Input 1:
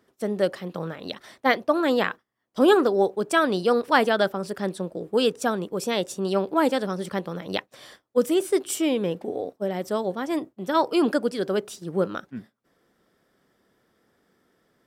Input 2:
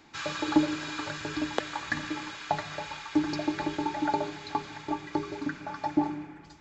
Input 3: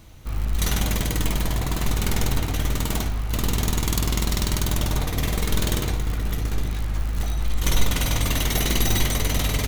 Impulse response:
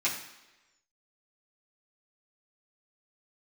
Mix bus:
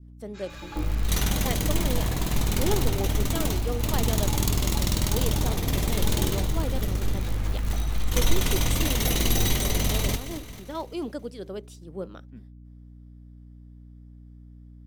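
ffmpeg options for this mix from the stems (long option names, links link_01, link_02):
-filter_complex "[0:a]aeval=exprs='val(0)+0.02*(sin(2*PI*60*n/s)+sin(2*PI*2*60*n/s)/2+sin(2*PI*3*60*n/s)/3+sin(2*PI*4*60*n/s)/4+sin(2*PI*5*60*n/s)/5)':channel_layout=same,equalizer=frequency=1500:width_type=o:width=0.77:gain=-6,volume=-11dB,asplit=2[link_01][link_02];[1:a]adelay=200,volume=-10dB,asplit=2[link_03][link_04];[link_04]volume=-11.5dB[link_05];[2:a]adelay=500,volume=-1.5dB,asplit=2[link_06][link_07];[link_07]volume=-11.5dB[link_08];[link_02]apad=whole_len=300040[link_09];[link_03][link_09]sidechaincompress=threshold=-46dB:ratio=8:attack=16:release=110[link_10];[3:a]atrim=start_sample=2205[link_11];[link_05][link_11]afir=irnorm=-1:irlink=0[link_12];[link_08]aecho=0:1:221|442|663|884|1105|1326|1547:1|0.49|0.24|0.118|0.0576|0.0282|0.0138[link_13];[link_01][link_10][link_06][link_12][link_13]amix=inputs=5:normalize=0,adynamicequalizer=threshold=0.00794:dfrequency=1500:dqfactor=0.97:tfrequency=1500:tqfactor=0.97:attack=5:release=100:ratio=0.375:range=2:mode=cutabove:tftype=bell"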